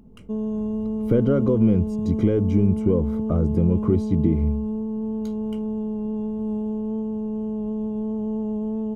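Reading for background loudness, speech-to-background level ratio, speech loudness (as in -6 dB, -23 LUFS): -27.0 LUFS, 4.5 dB, -22.5 LUFS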